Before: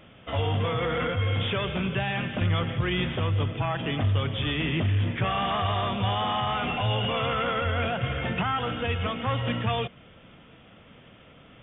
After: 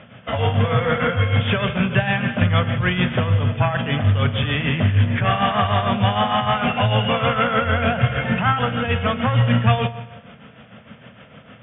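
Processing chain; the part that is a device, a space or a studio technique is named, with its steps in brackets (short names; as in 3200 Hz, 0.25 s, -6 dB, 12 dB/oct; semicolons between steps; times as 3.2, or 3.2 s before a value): combo amplifier with spring reverb and tremolo (spring tank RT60 1.2 s, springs 34/50 ms, chirp 65 ms, DRR 12 dB; tremolo 6.6 Hz, depth 59%; speaker cabinet 82–3400 Hz, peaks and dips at 120 Hz +5 dB, 220 Hz +6 dB, 330 Hz -10 dB, 620 Hz +3 dB, 1600 Hz +5 dB); gain +9 dB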